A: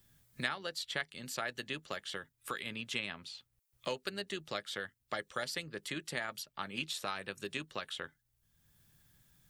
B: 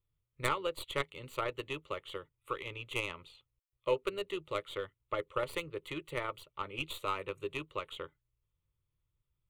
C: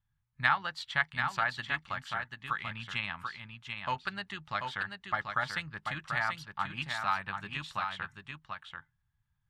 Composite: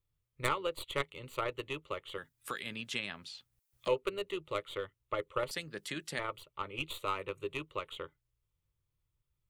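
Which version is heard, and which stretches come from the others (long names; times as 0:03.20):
B
0:02.18–0:03.88: punch in from A
0:05.51–0:06.19: punch in from A
not used: C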